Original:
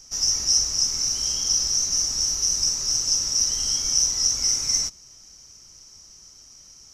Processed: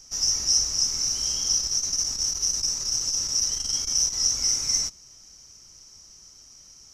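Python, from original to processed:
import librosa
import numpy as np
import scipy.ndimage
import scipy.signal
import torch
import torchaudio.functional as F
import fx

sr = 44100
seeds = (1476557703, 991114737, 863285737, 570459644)

y = fx.transformer_sat(x, sr, knee_hz=630.0, at=(1.56, 4.2))
y = y * 10.0 ** (-1.5 / 20.0)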